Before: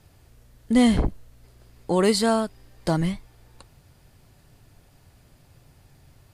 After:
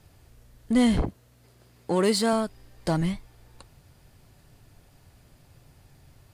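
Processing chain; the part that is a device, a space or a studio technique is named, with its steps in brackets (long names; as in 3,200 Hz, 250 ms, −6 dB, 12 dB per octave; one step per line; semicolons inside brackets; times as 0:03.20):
parallel distortion (in parallel at −5 dB: hard clipping −24 dBFS, distortion −6 dB)
0:01.02–0:02.33: on the sum: high-pass filter 97 Hz 12 dB per octave
level −4.5 dB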